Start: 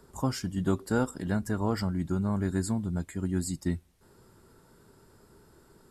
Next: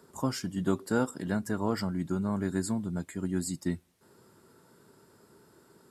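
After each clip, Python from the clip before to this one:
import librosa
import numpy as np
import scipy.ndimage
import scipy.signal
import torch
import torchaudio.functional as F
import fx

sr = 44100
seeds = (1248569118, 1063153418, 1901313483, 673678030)

y = scipy.signal.sosfilt(scipy.signal.butter(2, 140.0, 'highpass', fs=sr, output='sos'), x)
y = fx.notch(y, sr, hz=790.0, q=24.0)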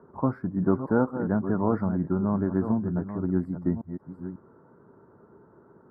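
y = fx.reverse_delay(x, sr, ms=545, wet_db=-10)
y = scipy.signal.sosfilt(scipy.signal.cheby2(4, 40, 2700.0, 'lowpass', fs=sr, output='sos'), y)
y = y * librosa.db_to_amplitude(5.0)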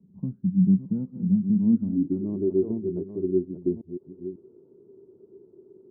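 y = fx.filter_sweep_lowpass(x, sr, from_hz=190.0, to_hz=380.0, start_s=1.43, end_s=2.48, q=7.9)
y = y * librosa.db_to_amplitude(-8.5)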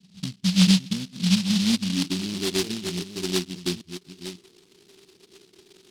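y = fx.peak_eq(x, sr, hz=180.0, db=7.0, octaves=0.25)
y = fx.noise_mod_delay(y, sr, seeds[0], noise_hz=3800.0, depth_ms=0.31)
y = y * librosa.db_to_amplitude(-3.0)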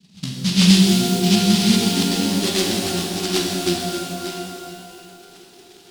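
y = x + 10.0 ** (-23.0 / 20.0) * np.pad(x, (int(1005 * sr / 1000.0), 0))[:len(x)]
y = fx.rev_shimmer(y, sr, seeds[1], rt60_s=2.3, semitones=12, shimmer_db=-8, drr_db=-1.5)
y = y * librosa.db_to_amplitude(3.0)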